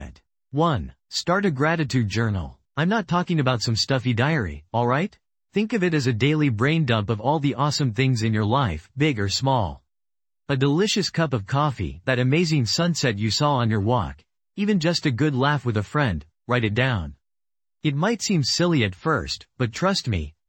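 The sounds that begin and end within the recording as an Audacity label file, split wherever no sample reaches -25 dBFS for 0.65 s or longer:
10.500000	17.040000	sound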